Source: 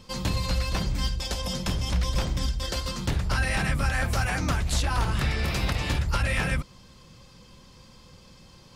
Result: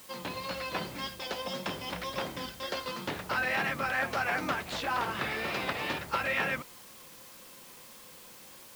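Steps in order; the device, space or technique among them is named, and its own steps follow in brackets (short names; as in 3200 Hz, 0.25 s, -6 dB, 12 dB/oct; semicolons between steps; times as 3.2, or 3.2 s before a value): dictaphone (BPF 320–3100 Hz; AGC gain up to 3.5 dB; wow and flutter; white noise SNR 17 dB); gain -3.5 dB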